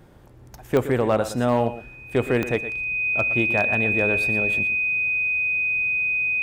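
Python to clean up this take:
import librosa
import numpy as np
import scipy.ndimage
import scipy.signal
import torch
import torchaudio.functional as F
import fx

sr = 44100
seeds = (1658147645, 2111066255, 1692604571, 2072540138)

y = fx.fix_declip(x, sr, threshold_db=-10.5)
y = fx.fix_declick_ar(y, sr, threshold=10.0)
y = fx.notch(y, sr, hz=2500.0, q=30.0)
y = fx.fix_echo_inverse(y, sr, delay_ms=118, level_db=-13.0)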